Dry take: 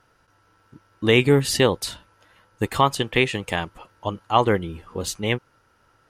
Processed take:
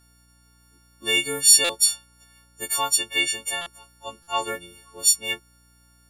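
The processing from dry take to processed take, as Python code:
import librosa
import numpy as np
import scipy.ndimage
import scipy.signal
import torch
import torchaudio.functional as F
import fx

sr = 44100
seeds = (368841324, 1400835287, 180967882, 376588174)

y = fx.freq_snap(x, sr, grid_st=4)
y = fx.bass_treble(y, sr, bass_db=-14, treble_db=13)
y = fx.add_hum(y, sr, base_hz=60, snr_db=34)
y = fx.buffer_glitch(y, sr, at_s=(1.64, 3.61, 4.22), block=256, repeats=8)
y = y * librosa.db_to_amplitude(-10.5)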